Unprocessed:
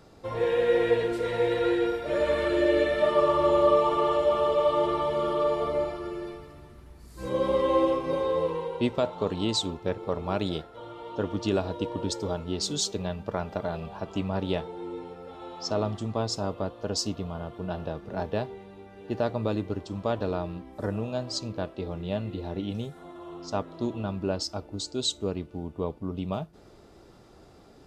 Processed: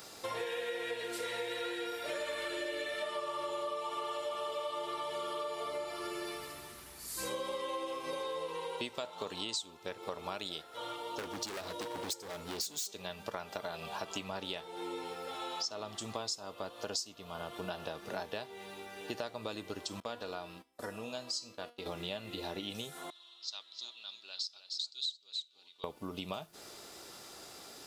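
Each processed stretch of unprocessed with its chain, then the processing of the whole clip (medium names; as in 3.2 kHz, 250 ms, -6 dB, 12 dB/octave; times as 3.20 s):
10.96–12.89 s: peaking EQ 2.2 kHz -6 dB 2.6 oct + overload inside the chain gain 32 dB
20.00–21.86 s: gate -41 dBFS, range -20 dB + feedback comb 240 Hz, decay 0.27 s, mix 70%
23.10–25.84 s: band-pass filter 3.9 kHz, Q 5.4 + delay 306 ms -10 dB
whole clip: tilt EQ +4.5 dB/octave; compression 8:1, threshold -40 dBFS; trim +4 dB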